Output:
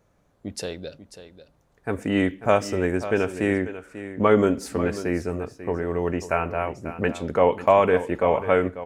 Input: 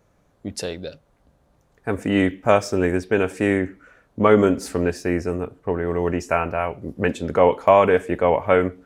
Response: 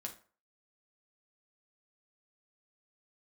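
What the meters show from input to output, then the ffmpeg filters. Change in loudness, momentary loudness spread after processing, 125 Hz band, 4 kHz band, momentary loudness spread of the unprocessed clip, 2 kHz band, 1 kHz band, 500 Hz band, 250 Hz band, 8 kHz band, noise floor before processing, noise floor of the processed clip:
−3.0 dB, 15 LU, −2.5 dB, −3.0 dB, 15 LU, −3.0 dB, −3.0 dB, −3.0 dB, −3.0 dB, −3.0 dB, −62 dBFS, −64 dBFS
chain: -af "aecho=1:1:542:0.224,volume=-3dB"

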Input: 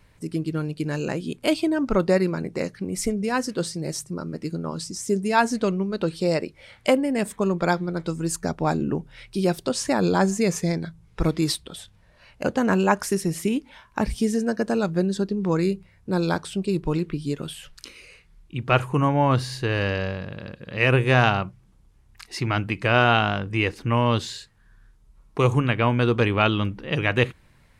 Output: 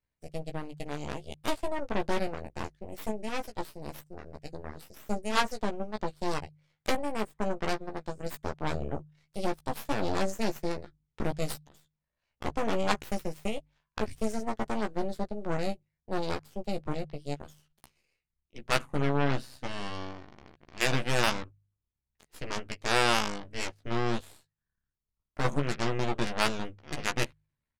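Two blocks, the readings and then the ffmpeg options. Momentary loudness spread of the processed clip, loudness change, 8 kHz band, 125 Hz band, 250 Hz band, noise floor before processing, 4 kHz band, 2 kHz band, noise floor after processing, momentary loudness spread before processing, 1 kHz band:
14 LU, −9.0 dB, −8.0 dB, −12.5 dB, −11.5 dB, −57 dBFS, −5.0 dB, −8.5 dB, below −85 dBFS, 11 LU, −7.5 dB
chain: -filter_complex "[0:a]aeval=exprs='0.631*(cos(1*acos(clip(val(0)/0.631,-1,1)))-cos(1*PI/2))+0.158*(cos(2*acos(clip(val(0)/0.631,-1,1)))-cos(2*PI/2))+0.126*(cos(3*acos(clip(val(0)/0.631,-1,1)))-cos(3*PI/2))+0.0316*(cos(7*acos(clip(val(0)/0.631,-1,1)))-cos(7*PI/2))+0.0891*(cos(8*acos(clip(val(0)/0.631,-1,1)))-cos(8*PI/2))':channel_layout=same,asplit=2[link_01][link_02];[link_02]adelay=14,volume=-5.5dB[link_03];[link_01][link_03]amix=inputs=2:normalize=0,bandreject=frequency=50.46:width_type=h:width=4,bandreject=frequency=100.92:width_type=h:width=4,bandreject=frequency=151.38:width_type=h:width=4,volume=-6dB"

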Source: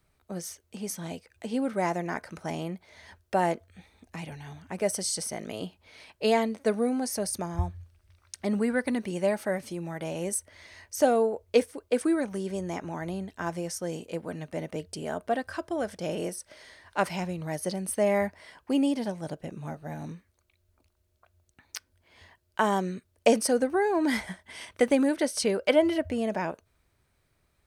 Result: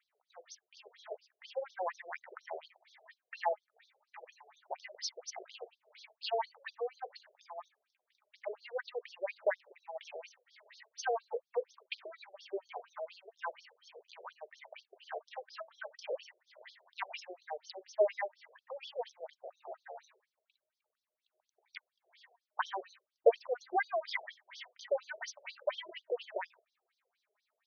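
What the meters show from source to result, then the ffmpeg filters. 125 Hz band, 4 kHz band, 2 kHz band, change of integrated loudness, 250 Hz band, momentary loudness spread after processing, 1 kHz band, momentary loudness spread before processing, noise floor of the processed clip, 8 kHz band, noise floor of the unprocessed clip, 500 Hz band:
below −40 dB, −8.5 dB, −8.0 dB, −10.5 dB, below −30 dB, 19 LU, −8.0 dB, 16 LU, below −85 dBFS, −18.5 dB, −72 dBFS, −9.5 dB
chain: -af "asubboost=boost=2.5:cutoff=150,aphaser=in_gain=1:out_gain=1:delay=4.8:decay=0.55:speed=0.42:type=sinusoidal,afftfilt=real='re*between(b*sr/1024,500*pow(4700/500,0.5+0.5*sin(2*PI*4.2*pts/sr))/1.41,500*pow(4700/500,0.5+0.5*sin(2*PI*4.2*pts/sr))*1.41)':imag='im*between(b*sr/1024,500*pow(4700/500,0.5+0.5*sin(2*PI*4.2*pts/sr))/1.41,500*pow(4700/500,0.5+0.5*sin(2*PI*4.2*pts/sr))*1.41)':win_size=1024:overlap=0.75,volume=-2.5dB"

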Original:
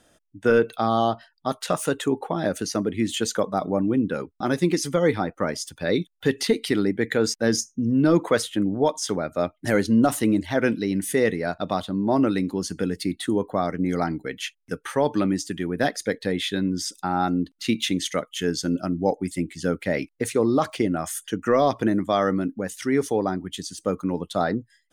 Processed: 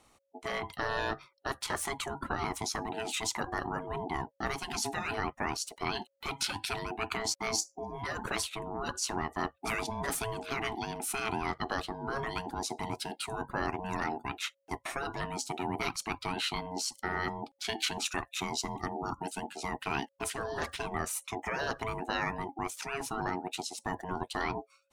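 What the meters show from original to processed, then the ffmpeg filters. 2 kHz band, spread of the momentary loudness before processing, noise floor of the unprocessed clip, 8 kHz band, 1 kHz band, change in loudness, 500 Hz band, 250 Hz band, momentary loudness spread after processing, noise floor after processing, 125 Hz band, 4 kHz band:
−4.5 dB, 7 LU, −67 dBFS, −4.5 dB, −6.0 dB, −11.0 dB, −15.0 dB, −18.0 dB, 5 LU, −72 dBFS, −12.5 dB, −5.0 dB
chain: -af "aeval=exprs='val(0)*sin(2*PI*550*n/s)':channel_layout=same,afftfilt=real='re*lt(hypot(re,im),0.178)':imag='im*lt(hypot(re,im),0.178)':win_size=1024:overlap=0.75,volume=-1.5dB"

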